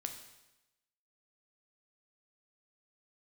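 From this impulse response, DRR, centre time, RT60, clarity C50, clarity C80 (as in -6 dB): 5.0 dB, 20 ms, 0.95 s, 8.0 dB, 10.5 dB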